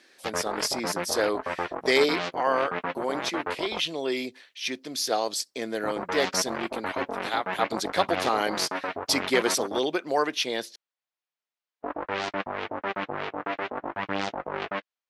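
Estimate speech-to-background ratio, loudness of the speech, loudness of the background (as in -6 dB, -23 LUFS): 4.5 dB, -28.0 LUFS, -32.5 LUFS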